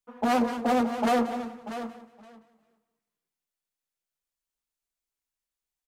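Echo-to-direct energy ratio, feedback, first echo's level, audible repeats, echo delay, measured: -14.5 dB, 25%, -15.0 dB, 2, 181 ms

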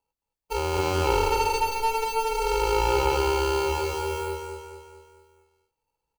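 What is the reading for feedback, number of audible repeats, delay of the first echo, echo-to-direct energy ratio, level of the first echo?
50%, 5, 219 ms, -4.5 dB, -5.5 dB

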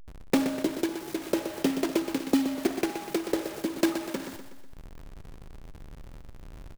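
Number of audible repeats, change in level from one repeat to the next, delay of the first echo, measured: 4, -5.5 dB, 123 ms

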